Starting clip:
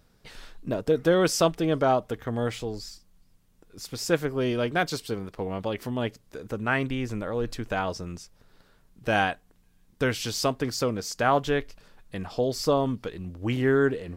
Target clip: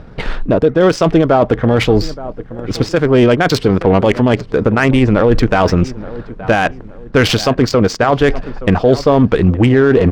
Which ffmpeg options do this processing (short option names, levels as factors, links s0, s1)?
-filter_complex "[0:a]areverse,acompressor=threshold=0.0282:ratio=8,areverse,atempo=1.4,asplit=2[s0][s1];[s1]adelay=872,lowpass=f=3700:p=1,volume=0.112,asplit=2[s2][s3];[s3]adelay=872,lowpass=f=3700:p=1,volume=0.38,asplit=2[s4][s5];[s5]adelay=872,lowpass=f=3700:p=1,volume=0.38[s6];[s0][s2][s4][s6]amix=inputs=4:normalize=0,adynamicsmooth=sensitivity=6:basefreq=1900,alimiter=level_in=26.6:limit=0.891:release=50:level=0:latency=1,volume=0.891"